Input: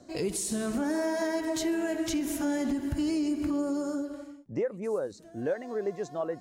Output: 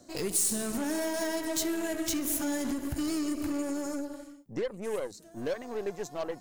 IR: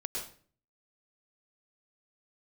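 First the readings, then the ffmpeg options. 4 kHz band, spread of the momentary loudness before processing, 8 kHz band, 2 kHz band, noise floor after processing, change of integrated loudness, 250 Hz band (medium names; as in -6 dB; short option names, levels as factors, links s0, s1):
+2.0 dB, 5 LU, +6.0 dB, -0.5 dB, -53 dBFS, -1.0 dB, -3.0 dB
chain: -af "aeval=exprs='0.0944*(cos(1*acos(clip(val(0)/0.0944,-1,1)))-cos(1*PI/2))+0.0075*(cos(8*acos(clip(val(0)/0.0944,-1,1)))-cos(8*PI/2))':c=same,aemphasis=mode=production:type=50kf,volume=0.708"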